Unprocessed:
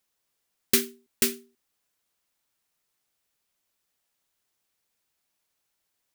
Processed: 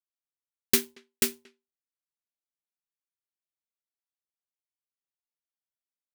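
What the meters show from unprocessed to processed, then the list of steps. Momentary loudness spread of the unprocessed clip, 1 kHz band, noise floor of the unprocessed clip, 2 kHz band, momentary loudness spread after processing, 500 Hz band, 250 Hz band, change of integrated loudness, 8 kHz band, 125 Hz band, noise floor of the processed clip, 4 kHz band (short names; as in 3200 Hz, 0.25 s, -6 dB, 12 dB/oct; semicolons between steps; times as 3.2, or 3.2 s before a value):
16 LU, 0.0 dB, -79 dBFS, -1.0 dB, 7 LU, -2.0 dB, -2.5 dB, -1.5 dB, -1.5 dB, -0.5 dB, under -85 dBFS, -1.0 dB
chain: power-law curve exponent 1.4; speakerphone echo 0.23 s, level -25 dB; gain +2.5 dB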